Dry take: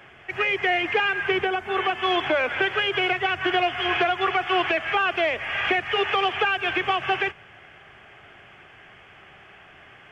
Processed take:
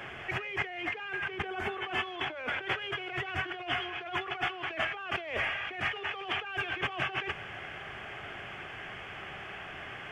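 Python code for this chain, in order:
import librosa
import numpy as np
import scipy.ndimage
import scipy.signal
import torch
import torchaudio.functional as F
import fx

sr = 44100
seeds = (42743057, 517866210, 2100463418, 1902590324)

y = fx.over_compress(x, sr, threshold_db=-34.0, ratio=-1.0)
y = y * librosa.db_to_amplitude(-2.5)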